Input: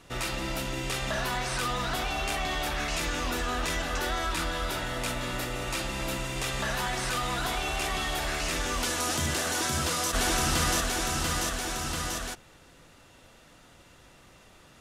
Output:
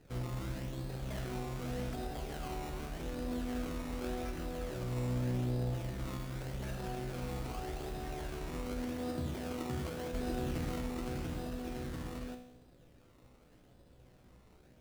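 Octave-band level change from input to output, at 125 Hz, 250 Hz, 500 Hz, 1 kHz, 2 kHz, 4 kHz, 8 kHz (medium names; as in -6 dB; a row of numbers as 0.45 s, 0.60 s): -2.5 dB, -3.0 dB, -6.5 dB, -14.0 dB, -18.5 dB, -19.5 dB, -22.0 dB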